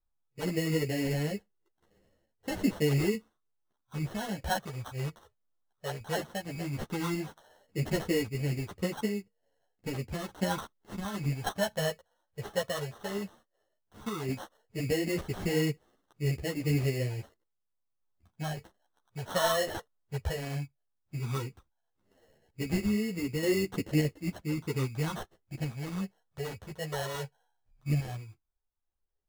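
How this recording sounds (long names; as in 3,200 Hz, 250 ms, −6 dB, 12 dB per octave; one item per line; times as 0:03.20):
sample-and-hold tremolo 3.5 Hz
phaser sweep stages 8, 0.14 Hz, lowest notch 280–1,400 Hz
aliases and images of a low sample rate 2,400 Hz, jitter 0%
a shimmering, thickened sound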